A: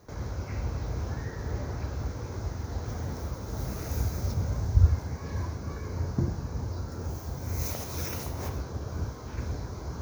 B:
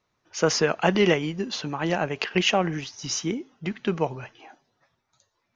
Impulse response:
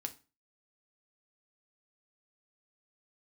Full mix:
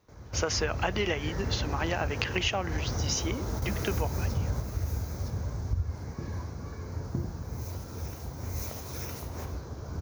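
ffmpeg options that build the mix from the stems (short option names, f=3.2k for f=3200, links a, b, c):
-filter_complex "[0:a]volume=3dB,asplit=2[a][b];[b]volume=-7dB[c];[1:a]lowshelf=f=310:g=-12,volume=1dB,asplit=2[d][e];[e]apad=whole_len=441720[f];[a][f]sidechaingate=range=-15dB:threshold=-57dB:ratio=16:detection=peak[g];[c]aecho=0:1:963:1[h];[g][d][h]amix=inputs=3:normalize=0,acompressor=threshold=-25dB:ratio=6"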